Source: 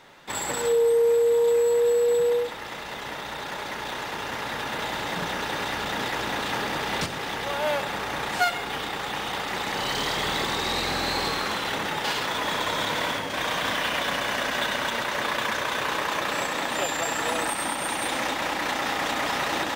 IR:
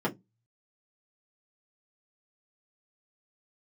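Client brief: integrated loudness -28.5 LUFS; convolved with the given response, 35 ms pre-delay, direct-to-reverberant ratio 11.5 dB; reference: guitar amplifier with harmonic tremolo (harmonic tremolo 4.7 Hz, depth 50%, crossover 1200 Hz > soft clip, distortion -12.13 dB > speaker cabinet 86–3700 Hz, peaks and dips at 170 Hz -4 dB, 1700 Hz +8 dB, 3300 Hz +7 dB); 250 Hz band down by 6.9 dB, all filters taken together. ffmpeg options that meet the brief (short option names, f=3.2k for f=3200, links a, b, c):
-filter_complex "[0:a]equalizer=f=250:t=o:g=-8.5,asplit=2[a][b];[1:a]atrim=start_sample=2205,adelay=35[c];[b][c]afir=irnorm=-1:irlink=0,volume=-20.5dB[d];[a][d]amix=inputs=2:normalize=0,acrossover=split=1200[e][f];[e]aeval=exprs='val(0)*(1-0.5/2+0.5/2*cos(2*PI*4.7*n/s))':c=same[g];[f]aeval=exprs='val(0)*(1-0.5/2-0.5/2*cos(2*PI*4.7*n/s))':c=same[h];[g][h]amix=inputs=2:normalize=0,asoftclip=threshold=-24.5dB,highpass=86,equalizer=f=170:t=q:w=4:g=-4,equalizer=f=1.7k:t=q:w=4:g=8,equalizer=f=3.3k:t=q:w=4:g=7,lowpass=f=3.7k:w=0.5412,lowpass=f=3.7k:w=1.3066"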